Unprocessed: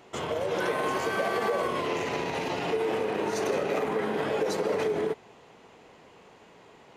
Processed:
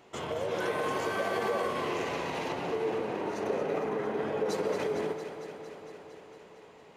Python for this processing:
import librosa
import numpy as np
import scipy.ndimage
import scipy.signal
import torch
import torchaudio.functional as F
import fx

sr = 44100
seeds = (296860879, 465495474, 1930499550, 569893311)

y = fx.high_shelf(x, sr, hz=2500.0, db=-10.5, at=(2.52, 4.49))
y = fx.echo_alternate(y, sr, ms=114, hz=1100.0, feedback_pct=86, wet_db=-8.0)
y = y * librosa.db_to_amplitude(-4.0)